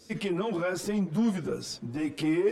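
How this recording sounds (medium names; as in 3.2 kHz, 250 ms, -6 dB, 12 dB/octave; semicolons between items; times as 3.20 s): a shimmering, thickened sound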